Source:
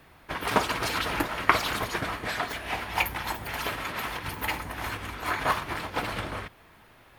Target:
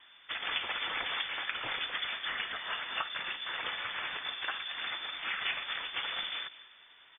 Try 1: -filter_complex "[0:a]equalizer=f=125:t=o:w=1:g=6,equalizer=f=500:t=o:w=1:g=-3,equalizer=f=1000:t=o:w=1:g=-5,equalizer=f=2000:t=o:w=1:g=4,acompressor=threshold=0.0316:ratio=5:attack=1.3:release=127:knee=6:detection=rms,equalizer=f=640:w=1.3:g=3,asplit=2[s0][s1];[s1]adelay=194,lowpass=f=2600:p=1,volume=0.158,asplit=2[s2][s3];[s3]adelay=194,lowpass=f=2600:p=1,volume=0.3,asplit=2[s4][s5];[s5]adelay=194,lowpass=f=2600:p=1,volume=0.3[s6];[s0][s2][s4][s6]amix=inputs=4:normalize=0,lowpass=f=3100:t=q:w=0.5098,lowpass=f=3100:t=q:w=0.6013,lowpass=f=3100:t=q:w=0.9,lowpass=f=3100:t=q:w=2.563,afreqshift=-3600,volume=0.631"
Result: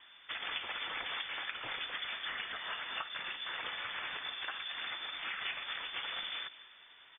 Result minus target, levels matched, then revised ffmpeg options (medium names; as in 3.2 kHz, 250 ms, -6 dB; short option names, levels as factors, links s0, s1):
compression: peak gain reduction +5.5 dB
-filter_complex "[0:a]equalizer=f=125:t=o:w=1:g=6,equalizer=f=500:t=o:w=1:g=-3,equalizer=f=1000:t=o:w=1:g=-5,equalizer=f=2000:t=o:w=1:g=4,acompressor=threshold=0.0708:ratio=5:attack=1.3:release=127:knee=6:detection=rms,equalizer=f=640:w=1.3:g=3,asplit=2[s0][s1];[s1]adelay=194,lowpass=f=2600:p=1,volume=0.158,asplit=2[s2][s3];[s3]adelay=194,lowpass=f=2600:p=1,volume=0.3,asplit=2[s4][s5];[s5]adelay=194,lowpass=f=2600:p=1,volume=0.3[s6];[s0][s2][s4][s6]amix=inputs=4:normalize=0,lowpass=f=3100:t=q:w=0.5098,lowpass=f=3100:t=q:w=0.6013,lowpass=f=3100:t=q:w=0.9,lowpass=f=3100:t=q:w=2.563,afreqshift=-3600,volume=0.631"